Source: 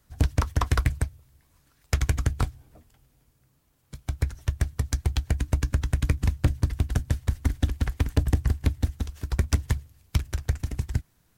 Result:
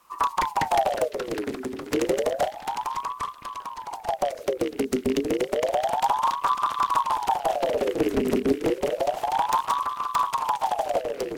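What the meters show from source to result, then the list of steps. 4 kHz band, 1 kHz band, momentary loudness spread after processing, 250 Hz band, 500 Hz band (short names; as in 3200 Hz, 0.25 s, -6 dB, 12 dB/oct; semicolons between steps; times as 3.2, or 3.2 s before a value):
+4.5 dB, +18.0 dB, 8 LU, +5.5 dB, +16.5 dB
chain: rattling part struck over -28 dBFS, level -25 dBFS; soft clip -24.5 dBFS, distortion -7 dB; on a send: delay with a stepping band-pass 0.508 s, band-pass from 3300 Hz, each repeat -1.4 oct, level -10 dB; on the sum: echoes that change speed 0.509 s, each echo -2 st, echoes 3, each echo -6 dB; ring modulator with a swept carrier 710 Hz, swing 55%, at 0.3 Hz; gain +8.5 dB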